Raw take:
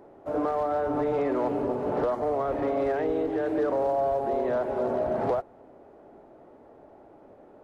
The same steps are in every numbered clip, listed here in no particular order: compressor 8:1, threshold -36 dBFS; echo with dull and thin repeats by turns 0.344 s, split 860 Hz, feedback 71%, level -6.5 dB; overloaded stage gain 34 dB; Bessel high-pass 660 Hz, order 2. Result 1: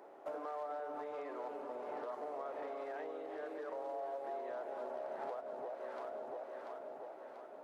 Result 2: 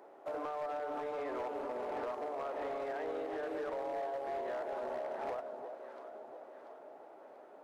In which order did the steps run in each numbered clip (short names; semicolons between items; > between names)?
echo with dull and thin repeats by turns > compressor > Bessel high-pass > overloaded stage; Bessel high-pass > compressor > echo with dull and thin repeats by turns > overloaded stage